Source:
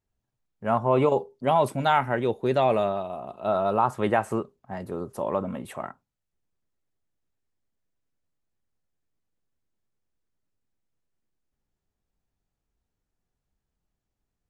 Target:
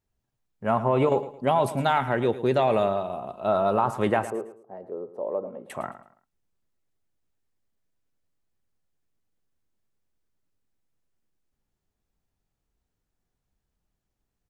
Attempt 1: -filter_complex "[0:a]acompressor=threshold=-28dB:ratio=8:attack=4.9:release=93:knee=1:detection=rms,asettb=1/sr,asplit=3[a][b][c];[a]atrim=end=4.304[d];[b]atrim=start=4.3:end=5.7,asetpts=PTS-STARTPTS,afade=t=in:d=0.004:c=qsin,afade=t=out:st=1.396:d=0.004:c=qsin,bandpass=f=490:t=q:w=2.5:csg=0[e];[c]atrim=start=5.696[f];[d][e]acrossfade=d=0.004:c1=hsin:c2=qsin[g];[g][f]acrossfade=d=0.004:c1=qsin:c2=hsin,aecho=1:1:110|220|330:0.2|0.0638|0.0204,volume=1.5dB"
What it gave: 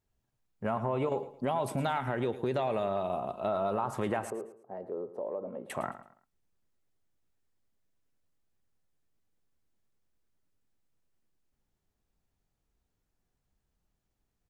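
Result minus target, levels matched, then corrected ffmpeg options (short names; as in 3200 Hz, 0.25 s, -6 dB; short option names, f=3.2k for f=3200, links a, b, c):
compressor: peak gain reduction +9 dB
-filter_complex "[0:a]acompressor=threshold=-17.5dB:ratio=8:attack=4.9:release=93:knee=1:detection=rms,asettb=1/sr,asplit=3[a][b][c];[a]atrim=end=4.304[d];[b]atrim=start=4.3:end=5.7,asetpts=PTS-STARTPTS,afade=t=in:d=0.004:c=qsin,afade=t=out:st=1.396:d=0.004:c=qsin,bandpass=f=490:t=q:w=2.5:csg=0[e];[c]atrim=start=5.696[f];[d][e]acrossfade=d=0.004:c1=hsin:c2=qsin[g];[g][f]acrossfade=d=0.004:c1=qsin:c2=hsin,aecho=1:1:110|220|330:0.2|0.0638|0.0204,volume=1.5dB"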